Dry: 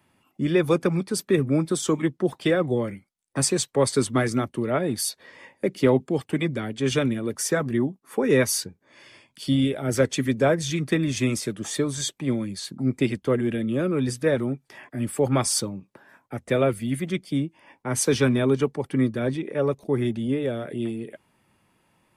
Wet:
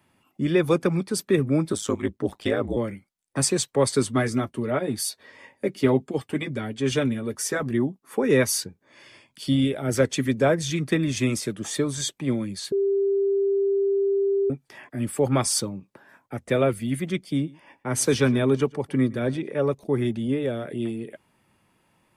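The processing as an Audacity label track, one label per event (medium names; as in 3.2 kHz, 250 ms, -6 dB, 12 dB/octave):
1.720000	2.770000	ring modulator 54 Hz
4.030000	7.630000	comb of notches 170 Hz
12.720000	14.500000	bleep 395 Hz -19 dBFS
17.270000	19.600000	delay 113 ms -22.5 dB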